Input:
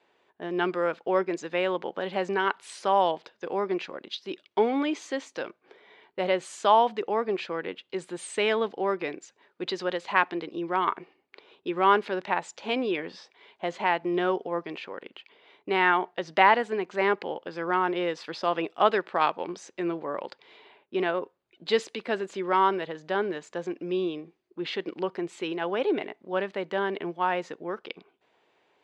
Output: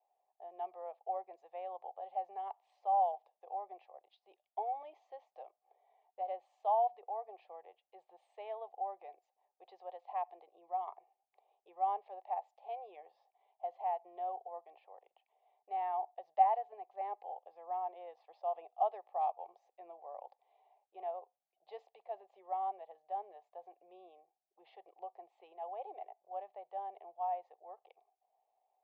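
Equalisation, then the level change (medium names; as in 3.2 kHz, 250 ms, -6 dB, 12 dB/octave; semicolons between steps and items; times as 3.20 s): ladder band-pass 790 Hz, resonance 80%; static phaser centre 610 Hz, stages 4; band-stop 950 Hz, Q 14; -5.0 dB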